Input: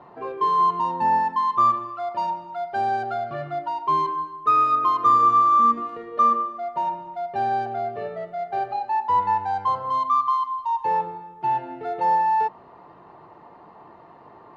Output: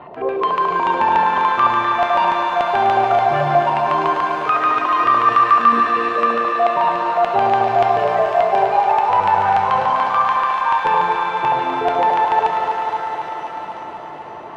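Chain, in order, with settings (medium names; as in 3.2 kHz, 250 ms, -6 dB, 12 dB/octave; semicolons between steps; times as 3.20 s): in parallel at +1 dB: compressor with a negative ratio -25 dBFS; on the sum: LFO low-pass square 6.9 Hz 650–2800 Hz; thinning echo 251 ms, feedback 76%, high-pass 200 Hz, level -8 dB; pitch-shifted reverb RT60 2.9 s, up +7 st, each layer -8 dB, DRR 4 dB; trim -1 dB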